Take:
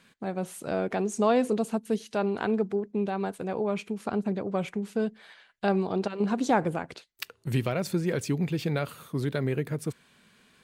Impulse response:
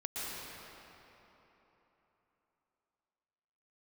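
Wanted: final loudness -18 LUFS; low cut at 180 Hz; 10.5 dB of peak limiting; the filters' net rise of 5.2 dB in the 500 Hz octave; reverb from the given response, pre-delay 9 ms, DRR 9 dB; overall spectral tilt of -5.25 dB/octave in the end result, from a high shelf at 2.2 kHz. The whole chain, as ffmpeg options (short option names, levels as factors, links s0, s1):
-filter_complex "[0:a]highpass=180,equalizer=f=500:t=o:g=7,highshelf=f=2200:g=-6.5,alimiter=limit=0.119:level=0:latency=1,asplit=2[s0][s1];[1:a]atrim=start_sample=2205,adelay=9[s2];[s1][s2]afir=irnorm=-1:irlink=0,volume=0.237[s3];[s0][s3]amix=inputs=2:normalize=0,volume=3.76"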